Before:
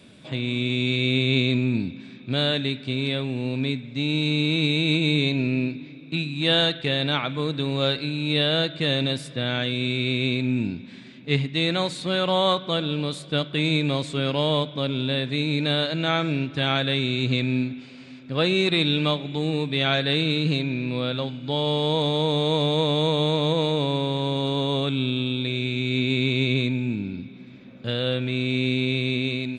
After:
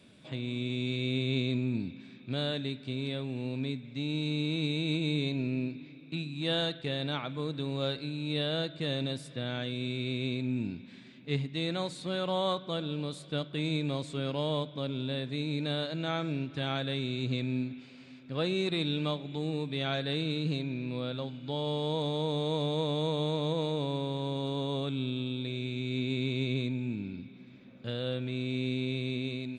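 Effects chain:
dynamic equaliser 2,400 Hz, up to −5 dB, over −38 dBFS, Q 0.75
level −8 dB

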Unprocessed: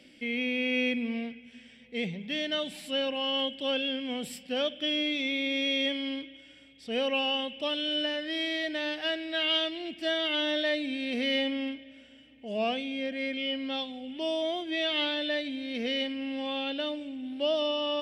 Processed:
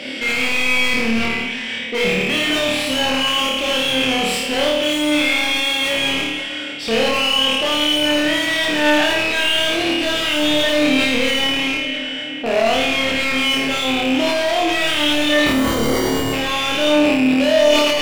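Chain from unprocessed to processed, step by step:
loose part that buzzes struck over −46 dBFS, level −25 dBFS
in parallel at +3 dB: downward compressor, threshold −38 dBFS, peak gain reduction 13.5 dB
on the sum: mid-hump overdrive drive 29 dB, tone 2,400 Hz, clips at −14 dBFS
0:15.46–0:16.33: sample-rate reduction 2,600 Hz, jitter 0%
flutter between parallel walls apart 4.6 metres, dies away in 0.82 s
level that may fall only so fast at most 23 dB per second

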